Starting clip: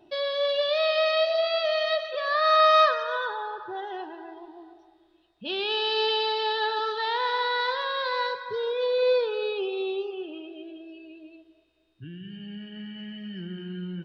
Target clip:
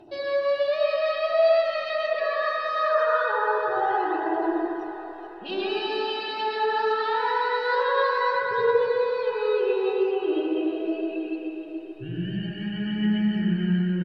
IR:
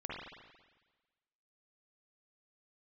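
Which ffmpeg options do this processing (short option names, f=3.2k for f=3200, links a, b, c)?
-filter_complex "[0:a]bandreject=f=3.4k:w=8.6,areverse,acompressor=threshold=-37dB:ratio=6,areverse,aecho=1:1:432|864|1296|1728|2160|2592:0.251|0.143|0.0816|0.0465|0.0265|0.0151,aphaser=in_gain=1:out_gain=1:delay=4.8:decay=0.44:speed=0.23:type=triangular[a];[1:a]atrim=start_sample=2205,asetrate=27342,aresample=44100[b];[a][b]afir=irnorm=-1:irlink=0,volume=9dB"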